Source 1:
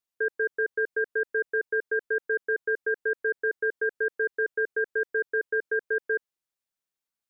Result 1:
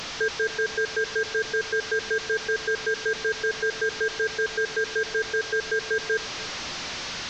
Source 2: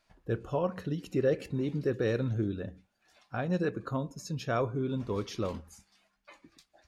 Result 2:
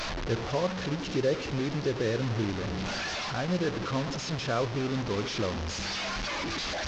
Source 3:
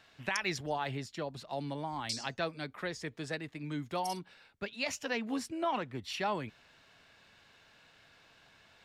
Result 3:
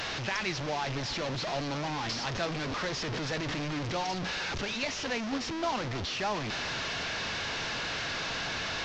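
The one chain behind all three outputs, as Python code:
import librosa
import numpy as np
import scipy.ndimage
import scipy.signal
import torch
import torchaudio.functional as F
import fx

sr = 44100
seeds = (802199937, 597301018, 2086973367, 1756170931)

p1 = fx.delta_mod(x, sr, bps=32000, step_db=-29.5)
p2 = fx.rider(p1, sr, range_db=3, speed_s=0.5)
p3 = p1 + (p2 * 10.0 ** (2.5 / 20.0))
p4 = p3 + 10.0 ** (-18.0 / 20.0) * np.pad(p3, (int(291 * sr / 1000.0), 0))[:len(p3)]
y = p4 * 10.0 ** (-6.0 / 20.0)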